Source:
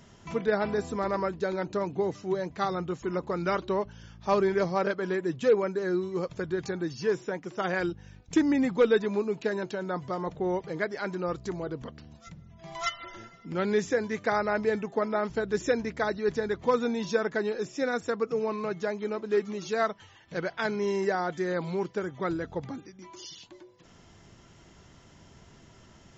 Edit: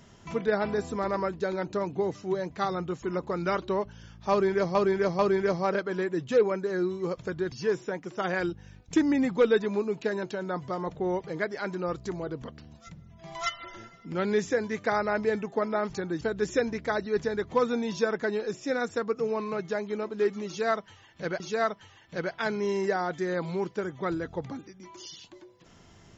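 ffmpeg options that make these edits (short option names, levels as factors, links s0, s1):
-filter_complex "[0:a]asplit=7[s0][s1][s2][s3][s4][s5][s6];[s0]atrim=end=4.752[s7];[s1]atrim=start=4.308:end=4.752[s8];[s2]atrim=start=4.308:end=6.642[s9];[s3]atrim=start=6.918:end=15.332[s10];[s4]atrim=start=6.638:end=6.922[s11];[s5]atrim=start=15.328:end=20.522[s12];[s6]atrim=start=19.588[s13];[s7][s8]acrossfade=d=0.004:c1=hsin:c2=hsin[s14];[s14][s9]acrossfade=d=0.004:c1=hsin:c2=hsin[s15];[s15][s10]acrossfade=d=0.004:c1=hsin:c2=hsin[s16];[s16][s11]acrossfade=d=0.004:c1=hsin:c2=hsin[s17];[s17][s12]acrossfade=d=0.004:c1=hsin:c2=hsin[s18];[s18][s13]acrossfade=d=0.004:c1=hsin:c2=hsin"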